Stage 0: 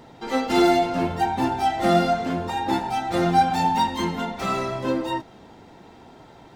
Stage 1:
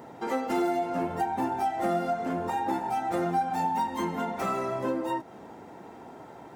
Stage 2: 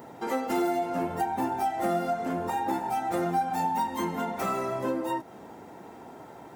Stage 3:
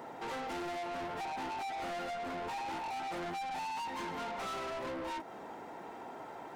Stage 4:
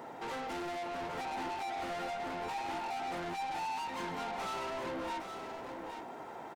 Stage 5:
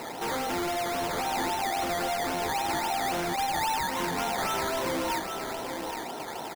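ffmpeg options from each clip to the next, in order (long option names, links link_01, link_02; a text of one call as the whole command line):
ffmpeg -i in.wav -af "highpass=frequency=270:poles=1,equalizer=frequency=3900:width_type=o:width=1.5:gain=-13,acompressor=threshold=-32dB:ratio=3,volume=4dB" out.wav
ffmpeg -i in.wav -af "highshelf=frequency=9900:gain=9.5" out.wav
ffmpeg -i in.wav -filter_complex "[0:a]acrossover=split=9900[link_01][link_02];[link_02]acompressor=threshold=-56dB:ratio=4:attack=1:release=60[link_03];[link_01][link_03]amix=inputs=2:normalize=0,asplit=2[link_04][link_05];[link_05]highpass=frequency=720:poles=1,volume=13dB,asoftclip=type=tanh:threshold=-15.5dB[link_06];[link_04][link_06]amix=inputs=2:normalize=0,lowpass=frequency=3000:poles=1,volume=-6dB,asoftclip=type=tanh:threshold=-33.5dB,volume=-4dB" out.wav
ffmpeg -i in.wav -af "aecho=1:1:817:0.447" out.wav
ffmpeg -i in.wav -af "acrusher=samples=13:mix=1:aa=0.000001:lfo=1:lforange=7.8:lforate=3.7,volume=9dB" out.wav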